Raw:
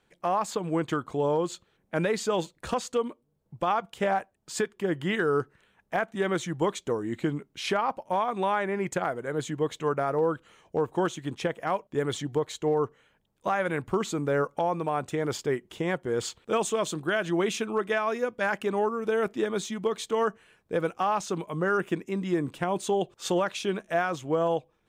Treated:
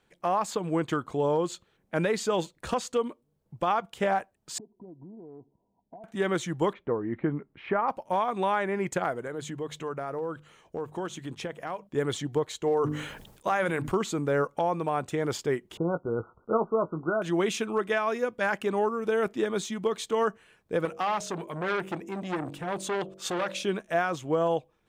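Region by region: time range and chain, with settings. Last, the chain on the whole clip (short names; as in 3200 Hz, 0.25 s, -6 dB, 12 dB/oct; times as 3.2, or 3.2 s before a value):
4.58–6.04 rippled Chebyshev low-pass 1000 Hz, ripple 9 dB + compressor 8:1, threshold -43 dBFS
6.73–7.88 LPF 2000 Hz 24 dB/oct + notch 1500 Hz, Q 22
9.27–11.89 notches 50/100/150/200 Hz + compressor 2:1, threshold -35 dBFS
12.63–13.94 high shelf 4400 Hz +4.5 dB + notches 50/100/150/200/250/300 Hz + sustainer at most 60 dB/s
15.77–17.22 brick-wall FIR low-pass 1500 Hz + doubler 18 ms -9 dB
20.85–23.64 de-hum 47.74 Hz, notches 14 + core saturation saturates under 1400 Hz
whole clip: dry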